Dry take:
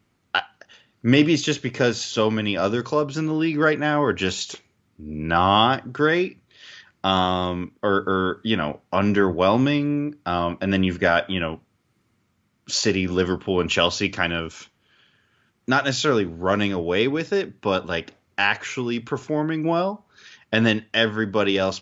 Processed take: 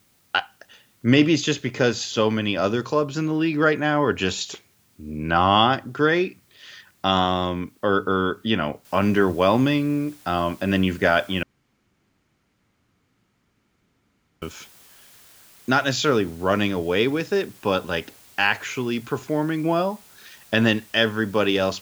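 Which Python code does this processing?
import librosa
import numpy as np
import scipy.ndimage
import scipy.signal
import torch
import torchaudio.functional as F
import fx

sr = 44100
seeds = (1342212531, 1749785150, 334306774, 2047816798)

y = fx.noise_floor_step(x, sr, seeds[0], at_s=8.85, before_db=-63, after_db=-51, tilt_db=0.0)
y = fx.edit(y, sr, fx.room_tone_fill(start_s=11.43, length_s=2.99), tone=tone)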